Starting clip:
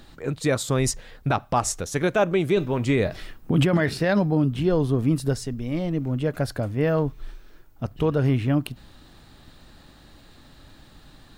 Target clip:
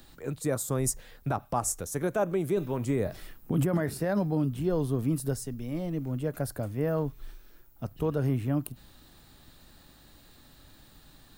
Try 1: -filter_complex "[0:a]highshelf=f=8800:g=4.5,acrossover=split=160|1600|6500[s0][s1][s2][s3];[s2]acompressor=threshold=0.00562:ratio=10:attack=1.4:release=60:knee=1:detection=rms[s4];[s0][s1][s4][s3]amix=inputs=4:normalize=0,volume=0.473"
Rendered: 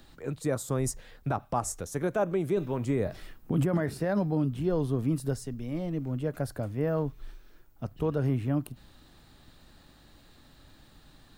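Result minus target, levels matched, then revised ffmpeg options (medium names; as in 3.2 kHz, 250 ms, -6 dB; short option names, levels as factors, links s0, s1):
8 kHz band -4.5 dB
-filter_complex "[0:a]highshelf=f=8800:g=16,acrossover=split=160|1600|6500[s0][s1][s2][s3];[s2]acompressor=threshold=0.00562:ratio=10:attack=1.4:release=60:knee=1:detection=rms[s4];[s0][s1][s4][s3]amix=inputs=4:normalize=0,volume=0.473"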